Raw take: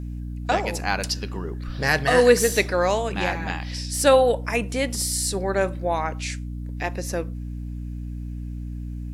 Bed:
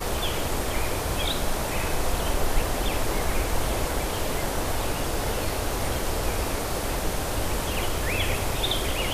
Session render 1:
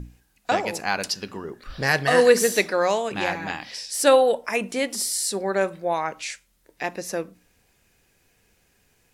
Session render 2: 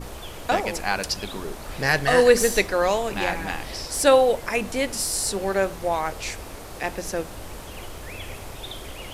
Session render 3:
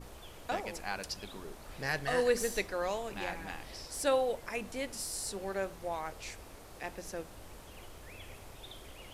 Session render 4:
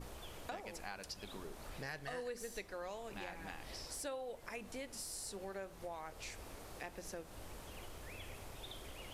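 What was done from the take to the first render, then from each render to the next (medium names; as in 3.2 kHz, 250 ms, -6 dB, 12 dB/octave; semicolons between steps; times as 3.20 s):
hum notches 60/120/180/240/300 Hz
add bed -10.5 dB
trim -13 dB
compression 4:1, threshold -44 dBFS, peak gain reduction 17 dB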